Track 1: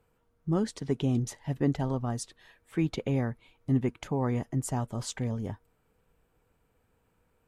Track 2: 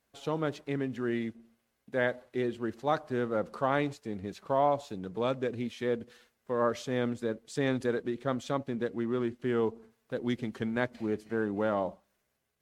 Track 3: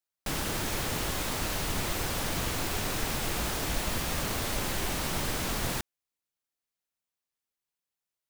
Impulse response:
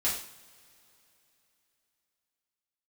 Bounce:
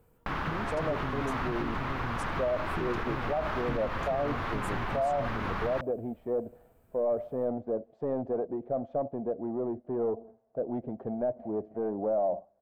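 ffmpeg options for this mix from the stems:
-filter_complex "[0:a]aemphasis=mode=production:type=50fm,acompressor=threshold=0.0158:ratio=6,volume=1.06[s0];[1:a]asoftclip=type=tanh:threshold=0.0422,lowpass=f=670:t=q:w=6.9,adelay=450,volume=0.841[s1];[2:a]firequalizer=gain_entry='entry(540,0);entry(1100,14);entry(7900,-16)':delay=0.05:min_phase=1,volume=0.631[s2];[s0][s2]amix=inputs=2:normalize=0,tiltshelf=f=1500:g=7,acompressor=threshold=0.0355:ratio=6,volume=1[s3];[s1][s3]amix=inputs=2:normalize=0,alimiter=limit=0.0841:level=0:latency=1:release=63"

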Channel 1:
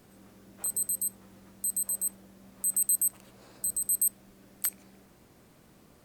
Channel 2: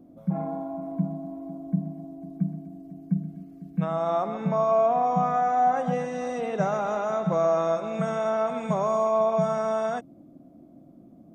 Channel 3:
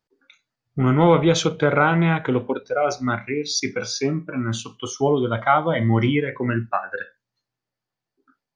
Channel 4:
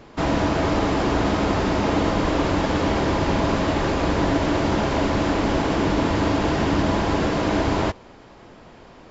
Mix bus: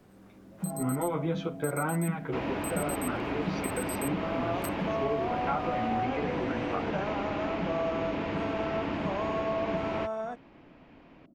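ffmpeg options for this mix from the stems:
-filter_complex "[0:a]volume=1.12[s0];[1:a]adelay=350,volume=0.447[s1];[2:a]lowpass=3300,asplit=2[s2][s3];[s3]adelay=10.7,afreqshift=1.7[s4];[s2][s4]amix=inputs=2:normalize=1,volume=0.422[s5];[3:a]lowpass=5700,equalizer=f=2500:t=o:w=0.78:g=9.5,adelay=2150,volume=0.266[s6];[s0][s1][s5][s6]amix=inputs=4:normalize=0,highshelf=f=3500:g=-11.5,acrossover=split=110|5600[s7][s8][s9];[s7]acompressor=threshold=0.00398:ratio=4[s10];[s8]acompressor=threshold=0.0501:ratio=4[s11];[s9]acompressor=threshold=0.00891:ratio=4[s12];[s10][s11][s12]amix=inputs=3:normalize=0"

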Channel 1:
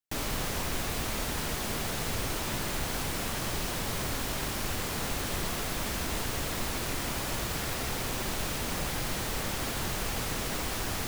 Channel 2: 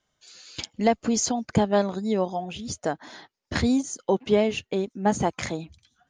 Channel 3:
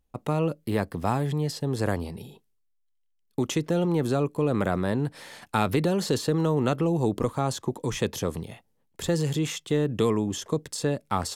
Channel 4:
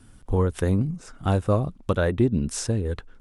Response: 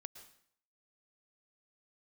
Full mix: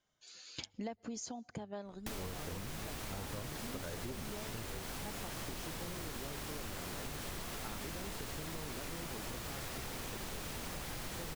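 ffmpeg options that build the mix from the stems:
-filter_complex "[0:a]adelay=1950,volume=0.841[s0];[1:a]bandreject=f=50:t=h:w=6,bandreject=f=100:t=h:w=6,volume=0.447,afade=t=out:st=0.93:d=0.63:silence=0.281838,asplit=2[s1][s2];[s2]volume=0.106[s3];[2:a]adelay=2100,volume=0.168[s4];[3:a]lowpass=4900,adelay=1850,volume=0.224[s5];[4:a]atrim=start_sample=2205[s6];[s3][s6]afir=irnorm=-1:irlink=0[s7];[s0][s1][s4][s5][s7]amix=inputs=5:normalize=0,acompressor=threshold=0.01:ratio=6"

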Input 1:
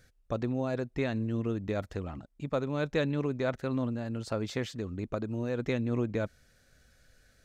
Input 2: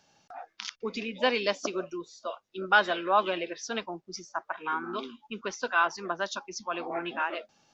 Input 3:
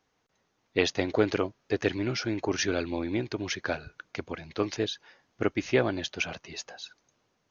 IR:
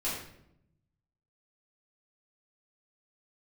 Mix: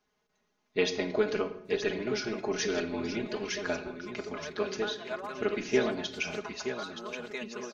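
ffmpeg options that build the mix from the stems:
-filter_complex "[0:a]highpass=580,adelay=1650,volume=0.631,asplit=2[s0][s1];[s1]volume=0.133[s2];[1:a]acompressor=threshold=0.0224:ratio=6,adelay=2100,volume=0.316,asplit=2[s3][s4];[s4]volume=0.15[s5];[2:a]volume=0.422,asplit=4[s6][s7][s8][s9];[s7]volume=0.266[s10];[s8]volume=0.473[s11];[s9]apad=whole_len=400973[s12];[s0][s12]sidechaincompress=threshold=0.00251:ratio=8:attack=16:release=213[s13];[3:a]atrim=start_sample=2205[s14];[s5][s10]amix=inputs=2:normalize=0[s15];[s15][s14]afir=irnorm=-1:irlink=0[s16];[s2][s11]amix=inputs=2:normalize=0,aecho=0:1:924|1848|2772|3696:1|0.27|0.0729|0.0197[s17];[s13][s3][s6][s16][s17]amix=inputs=5:normalize=0,aecho=1:1:4.8:0.91"

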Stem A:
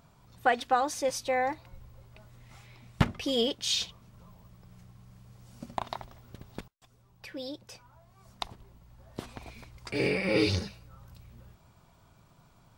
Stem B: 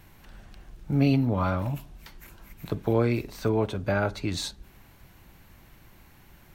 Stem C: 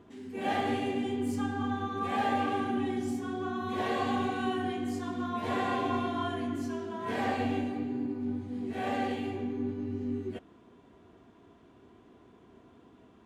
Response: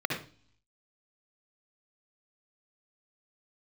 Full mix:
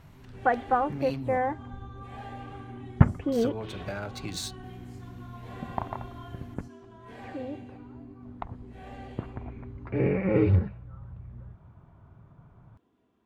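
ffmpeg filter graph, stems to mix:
-filter_complex "[0:a]lowpass=f=1800:w=0.5412,lowpass=f=1800:w=1.3066,equalizer=f=94:w=0.55:g=9.5,volume=1.06[s0];[1:a]aemphasis=mode=production:type=75fm,bandreject=f=47.1:t=h:w=4,bandreject=f=94.2:t=h:w=4,bandreject=f=141.3:t=h:w=4,bandreject=f=188.4:t=h:w=4,bandreject=f=235.5:t=h:w=4,bandreject=f=282.6:t=h:w=4,bandreject=f=329.7:t=h:w=4,bandreject=f=376.8:t=h:w=4,bandreject=f=423.9:t=h:w=4,bandreject=f=471:t=h:w=4,bandreject=f=518.1:t=h:w=4,adynamicsmooth=sensitivity=6:basefreq=4000,volume=0.596,asplit=3[s1][s2][s3];[s1]atrim=end=1.38,asetpts=PTS-STARTPTS,afade=t=out:st=1.376:d=0.004:c=hsin[s4];[s2]atrim=start=1.38:end=3.32,asetpts=PTS-STARTPTS,volume=0[s5];[s3]atrim=start=3.32,asetpts=PTS-STARTPTS,afade=t=in:d=0.004:c=hsin[s6];[s4][s5][s6]concat=n=3:v=0:a=1[s7];[2:a]volume=0.211[s8];[s7][s8]amix=inputs=2:normalize=0,acompressor=threshold=0.0224:ratio=3,volume=1[s9];[s0][s9]amix=inputs=2:normalize=0"

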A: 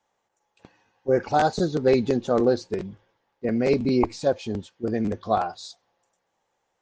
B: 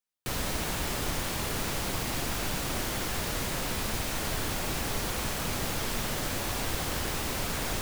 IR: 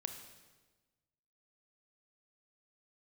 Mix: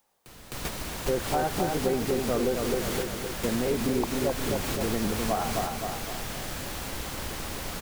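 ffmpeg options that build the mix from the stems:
-filter_complex "[0:a]lowpass=f=2000:w=0.5412,lowpass=f=2000:w=1.3066,volume=0.944,asplit=3[s0][s1][s2];[s1]volume=0.531[s3];[1:a]acompressor=mode=upward:threshold=0.0251:ratio=2.5,volume=1.12,asplit=3[s4][s5][s6];[s5]volume=0.126[s7];[s6]volume=0.531[s8];[s2]apad=whole_len=344621[s9];[s4][s9]sidechaingate=range=0.0251:threshold=0.00355:ratio=16:detection=peak[s10];[2:a]atrim=start_sample=2205[s11];[s7][s11]afir=irnorm=-1:irlink=0[s12];[s3][s8]amix=inputs=2:normalize=0,aecho=0:1:259|518|777|1036|1295|1554:1|0.44|0.194|0.0852|0.0375|0.0165[s13];[s0][s10][s12][s13]amix=inputs=4:normalize=0,acompressor=threshold=0.0562:ratio=3"

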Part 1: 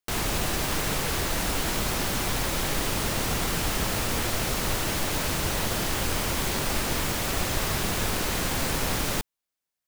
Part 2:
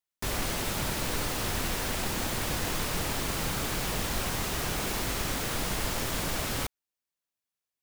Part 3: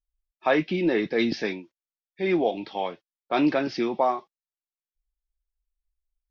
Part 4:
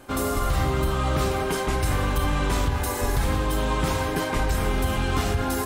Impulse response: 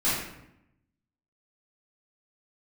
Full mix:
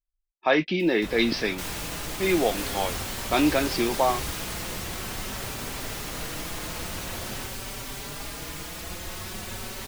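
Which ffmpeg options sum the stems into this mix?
-filter_complex "[0:a]asplit=2[s0][s1];[s1]adelay=4.6,afreqshift=0.46[s2];[s0][s2]amix=inputs=2:normalize=1,adelay=1500,volume=0.447[s3];[1:a]acompressor=mode=upward:threshold=0.0178:ratio=2.5,alimiter=limit=0.0668:level=0:latency=1,acrossover=split=2600[s4][s5];[s5]acompressor=threshold=0.00398:ratio=4:attack=1:release=60[s6];[s4][s6]amix=inputs=2:normalize=0,adelay=800,volume=0.668[s7];[2:a]volume=1,asplit=2[s8][s9];[3:a]adelay=2400,volume=0.188[s10];[s9]apad=whole_len=355345[s11];[s10][s11]sidechaingate=range=0.0224:threshold=0.00562:ratio=16:detection=peak[s12];[s3][s7][s8][s12]amix=inputs=4:normalize=0,anlmdn=0.00631,adynamicequalizer=threshold=0.00794:dfrequency=2000:dqfactor=0.7:tfrequency=2000:tqfactor=0.7:attack=5:release=100:ratio=0.375:range=3:mode=boostabove:tftype=highshelf"

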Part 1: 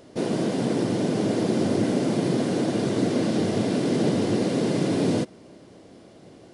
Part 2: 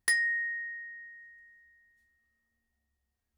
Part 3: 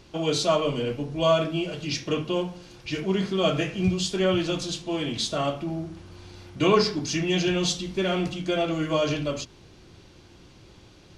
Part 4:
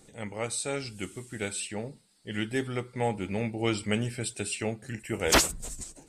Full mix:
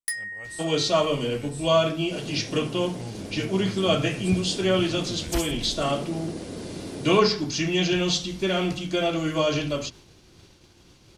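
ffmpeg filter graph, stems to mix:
-filter_complex "[0:a]adelay=1950,volume=0.224[s0];[1:a]volume=0.447[s1];[2:a]acrossover=split=5600[s2][s3];[s3]acompressor=threshold=0.00251:ratio=4:attack=1:release=60[s4];[s2][s4]amix=inputs=2:normalize=0,adelay=450,volume=1.06[s5];[3:a]asubboost=boost=9:cutoff=160,volume=0.188,asplit=2[s6][s7];[s7]apad=whole_len=374252[s8];[s0][s8]sidechaincompress=threshold=0.0126:ratio=8:attack=16:release=151[s9];[s9][s1][s5][s6]amix=inputs=4:normalize=0,agate=range=0.0224:threshold=0.00562:ratio=3:detection=peak,crystalizer=i=1.5:c=0"

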